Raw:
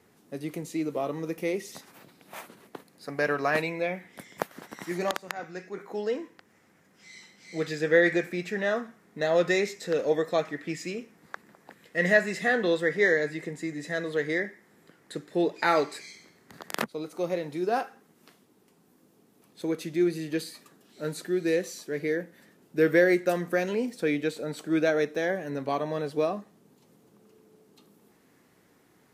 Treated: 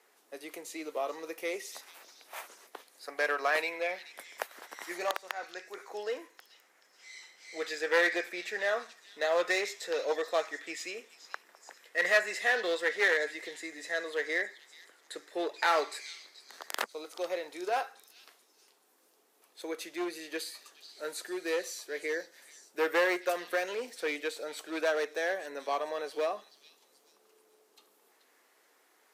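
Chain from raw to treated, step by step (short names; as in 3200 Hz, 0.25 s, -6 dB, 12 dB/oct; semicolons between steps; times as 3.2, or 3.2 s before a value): one-sided clip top -22 dBFS; Bessel high-pass 620 Hz, order 4; delay with a stepping band-pass 0.431 s, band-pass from 4300 Hz, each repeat 0.7 oct, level -9.5 dB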